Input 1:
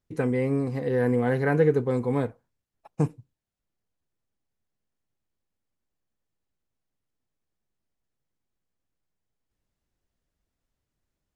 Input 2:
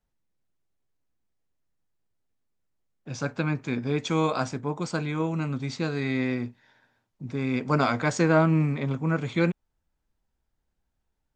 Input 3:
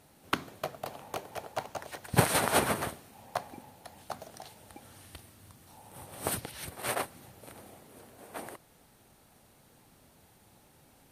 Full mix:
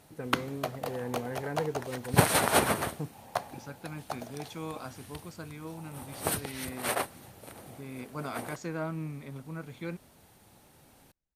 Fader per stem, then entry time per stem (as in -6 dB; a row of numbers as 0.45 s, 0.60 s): -13.0 dB, -14.5 dB, +2.0 dB; 0.00 s, 0.45 s, 0.00 s